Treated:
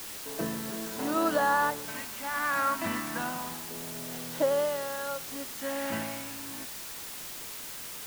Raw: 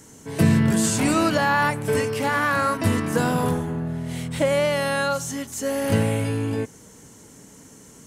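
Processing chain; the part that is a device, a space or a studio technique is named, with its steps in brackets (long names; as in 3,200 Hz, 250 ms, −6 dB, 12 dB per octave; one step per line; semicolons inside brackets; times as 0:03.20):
shortwave radio (band-pass filter 340–2,800 Hz; amplitude tremolo 0.7 Hz, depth 60%; auto-filter notch square 0.27 Hz 450–2,300 Hz; white noise bed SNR 8 dB)
level −3 dB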